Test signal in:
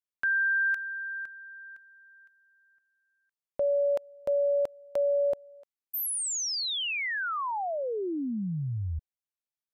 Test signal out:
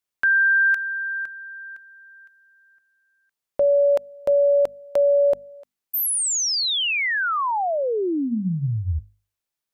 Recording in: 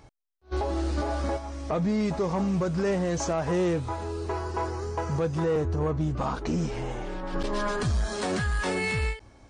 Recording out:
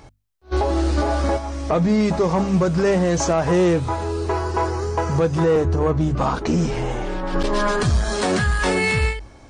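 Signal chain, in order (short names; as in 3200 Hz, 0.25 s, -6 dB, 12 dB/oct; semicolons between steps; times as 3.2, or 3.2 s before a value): notches 50/100/150/200/250 Hz; gain +8.5 dB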